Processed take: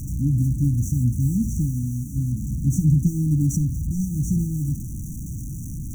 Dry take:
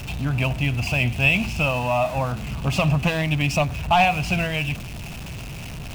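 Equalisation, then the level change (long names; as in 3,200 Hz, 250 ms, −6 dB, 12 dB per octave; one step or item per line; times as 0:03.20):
linear-phase brick-wall band-stop 340–5,700 Hz
+3.5 dB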